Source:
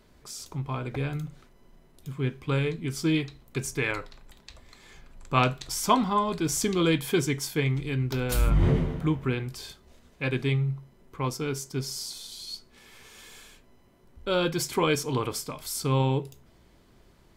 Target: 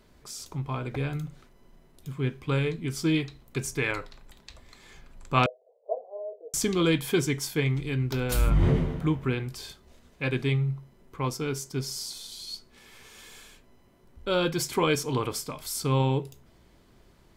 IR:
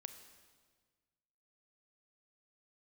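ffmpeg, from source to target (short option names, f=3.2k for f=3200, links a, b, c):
-filter_complex "[0:a]asettb=1/sr,asplit=3[a][b][c];[a]atrim=end=5.464[d];[b]atrim=start=5.46:end=6.54,asetpts=PTS-STARTPTS,afade=t=in:d=0.004:c=qsin,afade=t=out:st=1.076:d=0.004:c=qsin,asuperpass=centerf=560:order=8:qfactor=2.4[e];[c]atrim=start=6.536[f];[d][e]acrossfade=d=0.004:c1=hsin:c2=qsin[g];[g][f]acrossfade=d=0.004:c1=qsin:c2=hsin"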